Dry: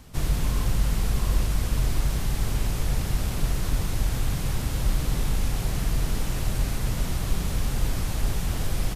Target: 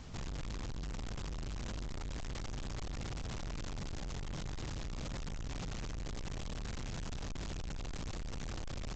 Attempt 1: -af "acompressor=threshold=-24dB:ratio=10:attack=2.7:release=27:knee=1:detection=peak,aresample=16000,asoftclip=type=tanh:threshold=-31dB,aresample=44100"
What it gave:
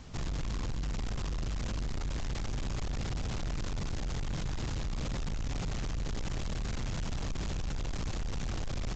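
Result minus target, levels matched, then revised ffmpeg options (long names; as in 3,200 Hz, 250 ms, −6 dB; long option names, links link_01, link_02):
soft clipping: distortion −4 dB
-af "acompressor=threshold=-24dB:ratio=10:attack=2.7:release=27:knee=1:detection=peak,aresample=16000,asoftclip=type=tanh:threshold=-39dB,aresample=44100"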